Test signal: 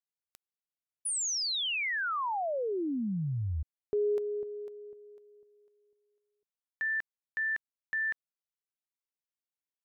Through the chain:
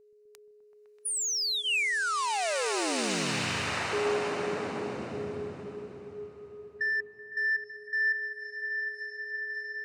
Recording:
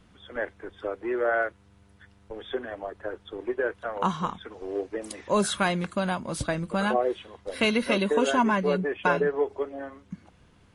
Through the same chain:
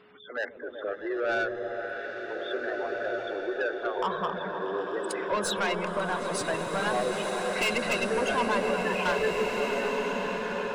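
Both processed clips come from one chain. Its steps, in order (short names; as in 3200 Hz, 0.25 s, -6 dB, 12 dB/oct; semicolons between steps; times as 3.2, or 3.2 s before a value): weighting filter A; spectral gate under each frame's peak -15 dB strong; notch 3300 Hz, Q 6.6; dynamic EQ 2600 Hz, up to +6 dB, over -49 dBFS, Q 3.3; in parallel at -1 dB: compressor, threshold -38 dBFS; on the sum: soft clip -23.5 dBFS; whine 420 Hz -57 dBFS; on a send: repeats that get brighter 0.127 s, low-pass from 200 Hz, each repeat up 1 oct, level 0 dB; on the sum: bloom reverb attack 1.89 s, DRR 3 dB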